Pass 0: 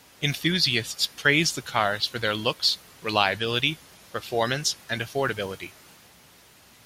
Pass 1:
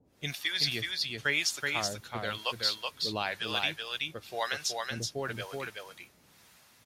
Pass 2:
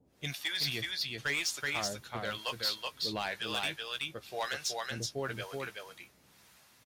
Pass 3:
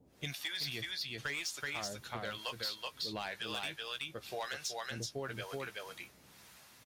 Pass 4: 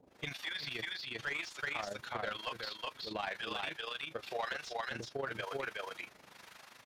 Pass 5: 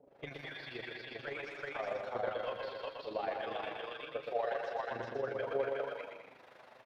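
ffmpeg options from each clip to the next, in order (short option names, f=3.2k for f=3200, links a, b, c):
-filter_complex "[0:a]bandreject=f=3k:w=22,acrossover=split=570[a][b];[a]aeval=exprs='val(0)*(1-1/2+1/2*cos(2*PI*1*n/s))':c=same[c];[b]aeval=exprs='val(0)*(1-1/2-1/2*cos(2*PI*1*n/s))':c=same[d];[c][d]amix=inputs=2:normalize=0,asplit=2[e][f];[f]aecho=0:1:376:0.668[g];[e][g]amix=inputs=2:normalize=0,volume=-4.5dB"
-filter_complex "[0:a]asoftclip=type=hard:threshold=-25dB,asplit=2[a][b];[b]adelay=15,volume=-11.5dB[c];[a][c]amix=inputs=2:normalize=0,volume=-2dB"
-af "acompressor=threshold=-42dB:ratio=3,volume=3dB"
-filter_complex "[0:a]tremolo=f=25:d=0.75,asplit=2[a][b];[b]highpass=f=720:p=1,volume=16dB,asoftclip=type=tanh:threshold=-26.5dB[c];[a][c]amix=inputs=2:normalize=0,lowpass=f=1.9k:p=1,volume=-6dB,acrossover=split=4500[d][e];[e]acompressor=threshold=-54dB:ratio=4:attack=1:release=60[f];[d][f]amix=inputs=2:normalize=0,volume=1.5dB"
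-filter_complex "[0:a]firequalizer=gain_entry='entry(140,0);entry(550,12);entry(1000,2);entry(6700,-14)':delay=0.05:min_phase=1,flanger=delay=7:depth=1.1:regen=50:speed=0.69:shape=triangular,asplit=2[a][b];[b]aecho=0:1:120|210|277.5|328.1|366.1:0.631|0.398|0.251|0.158|0.1[c];[a][c]amix=inputs=2:normalize=0,volume=-2dB"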